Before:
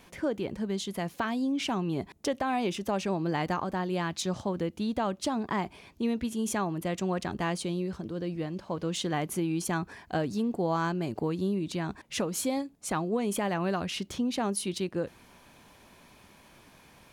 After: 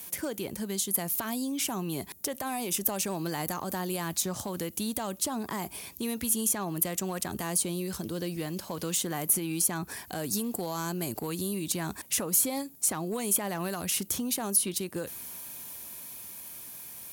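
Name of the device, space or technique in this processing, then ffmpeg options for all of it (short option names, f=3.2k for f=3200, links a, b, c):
FM broadcast chain: -filter_complex "[0:a]highpass=f=53:w=0.5412,highpass=f=53:w=1.3066,dynaudnorm=f=350:g=13:m=3.5dB,acrossover=split=880|1900|6200[a][b][c][d];[a]acompressor=threshold=-30dB:ratio=4[e];[b]acompressor=threshold=-37dB:ratio=4[f];[c]acompressor=threshold=-49dB:ratio=4[g];[d]acompressor=threshold=-47dB:ratio=4[h];[e][f][g][h]amix=inputs=4:normalize=0,aemphasis=mode=production:type=50fm,alimiter=limit=-24dB:level=0:latency=1:release=67,asoftclip=type=hard:threshold=-25.5dB,lowpass=f=15k:w=0.5412,lowpass=f=15k:w=1.3066,aemphasis=mode=production:type=50fm"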